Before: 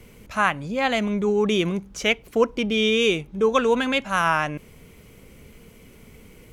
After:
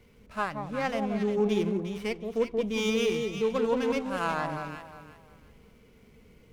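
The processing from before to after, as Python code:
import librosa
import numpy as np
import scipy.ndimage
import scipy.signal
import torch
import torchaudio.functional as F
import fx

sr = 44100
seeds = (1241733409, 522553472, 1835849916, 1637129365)

y = fx.hpss(x, sr, part='percussive', gain_db=-10)
y = fx.echo_alternate(y, sr, ms=178, hz=950.0, feedback_pct=51, wet_db=-2.5)
y = fx.running_max(y, sr, window=5)
y = F.gain(torch.from_numpy(y), -7.0).numpy()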